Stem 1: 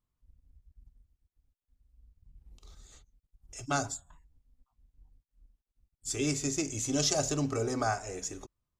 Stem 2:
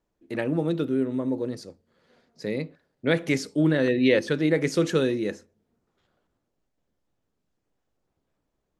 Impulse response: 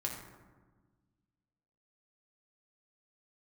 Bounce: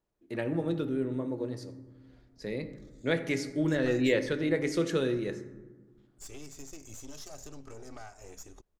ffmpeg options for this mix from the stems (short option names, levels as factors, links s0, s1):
-filter_complex "[0:a]acompressor=threshold=0.02:ratio=6,aeval=exprs='(tanh(50.1*val(0)+0.65)-tanh(0.65))/50.1':c=same,adelay=150,volume=0.531[s0];[1:a]volume=0.355,asplit=2[s1][s2];[s2]volume=0.562[s3];[2:a]atrim=start_sample=2205[s4];[s3][s4]afir=irnorm=-1:irlink=0[s5];[s0][s1][s5]amix=inputs=3:normalize=0,asubboost=boost=2.5:cutoff=71"